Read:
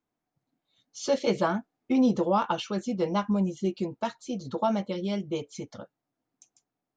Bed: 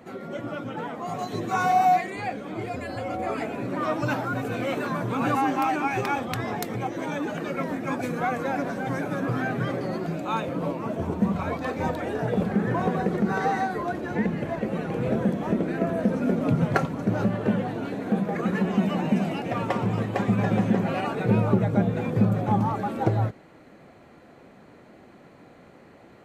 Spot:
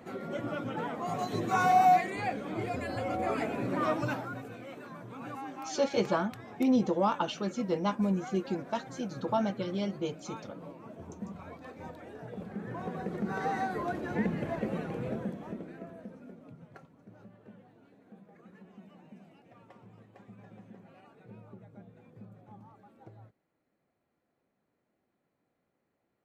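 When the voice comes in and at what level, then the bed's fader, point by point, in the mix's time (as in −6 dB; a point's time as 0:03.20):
4.70 s, −3.0 dB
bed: 0:03.88 −2.5 dB
0:04.63 −17.5 dB
0:12.35 −17.5 dB
0:13.78 −5 dB
0:14.70 −5 dB
0:16.60 −29.5 dB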